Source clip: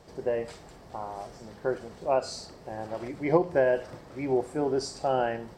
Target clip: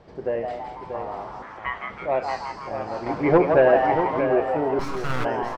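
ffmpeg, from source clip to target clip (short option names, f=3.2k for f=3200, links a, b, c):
-filter_complex "[0:a]asoftclip=type=tanh:threshold=-16.5dB,asettb=1/sr,asplit=3[a][b][c];[a]atrim=end=1.424[d];[b]atrim=start=1.42:end=1.9,asetpts=PTS-STARTPTS,afade=t=in:d=0.004:c=qsin,afade=t=out:st=0.476:d=0.004:c=qsin,aeval=exprs='val(0)*sin(2*PI*1500*n/s)':c=same[e];[c]atrim=start=1.896[f];[d][e]acrossfade=d=0.004:c1=hsin:c2=qsin[g];[g][f]acrossfade=d=0.004:c1=qsin:c2=hsin,asplit=8[h][i][j][k][l][m][n][o];[i]adelay=164,afreqshift=140,volume=-5.5dB[p];[j]adelay=328,afreqshift=280,volume=-10.5dB[q];[k]adelay=492,afreqshift=420,volume=-15.6dB[r];[l]adelay=656,afreqshift=560,volume=-20.6dB[s];[m]adelay=820,afreqshift=700,volume=-25.6dB[t];[n]adelay=984,afreqshift=840,volume=-30.7dB[u];[o]adelay=1148,afreqshift=980,volume=-35.7dB[v];[h][p][q][r][s][t][u][v]amix=inputs=8:normalize=0,asettb=1/sr,asplit=3[w][x][y];[w]atrim=end=3.064[z];[x]atrim=start=3.06:end=4.21,asetpts=PTS-STARTPTS,afade=t=in:d=0.004:c=qsin,afade=t=out:st=1.146:d=0.004:c=qsin,acontrast=37[aa];[y]atrim=start=4.206[ab];[z][aa]acrossfade=d=0.004:c1=hsin:c2=qsin[ac];[ac][ab]acrossfade=d=0.004:c1=qsin:c2=hsin,lowpass=3k,asettb=1/sr,asplit=3[ad][ae][af];[ad]atrim=end=4.794[ag];[ae]atrim=start=4.79:end=5.25,asetpts=PTS-STARTPTS,afade=t=in:d=0.004:c=qsin,afade=t=out:st=0.456:d=0.004:c=qsin,aeval=exprs='abs(val(0))':c=same[ah];[af]atrim=start=5.246[ai];[ag][ah]acrossfade=d=0.004:c1=hsin:c2=qsin[aj];[aj][ai]acrossfade=d=0.004:c1=qsin:c2=hsin,aecho=1:1:635:0.398,volume=3dB"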